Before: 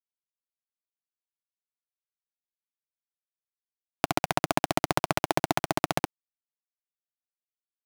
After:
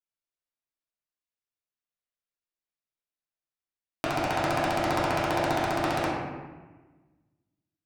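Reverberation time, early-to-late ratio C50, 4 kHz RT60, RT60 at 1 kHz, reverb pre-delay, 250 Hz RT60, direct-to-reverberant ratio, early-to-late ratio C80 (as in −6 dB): 1.3 s, −0.5 dB, 0.80 s, 1.2 s, 3 ms, 1.6 s, −8.5 dB, 2.0 dB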